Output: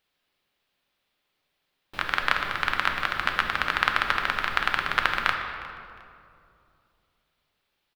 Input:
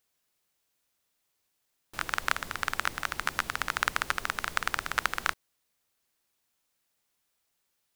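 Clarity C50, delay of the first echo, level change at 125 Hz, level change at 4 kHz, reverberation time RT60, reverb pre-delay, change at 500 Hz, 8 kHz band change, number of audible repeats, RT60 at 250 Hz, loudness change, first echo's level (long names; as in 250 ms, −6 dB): 5.0 dB, 357 ms, +5.0 dB, +6.0 dB, 2.6 s, 4 ms, +6.0 dB, −8.0 dB, 2, 3.0 s, +5.5 dB, −19.0 dB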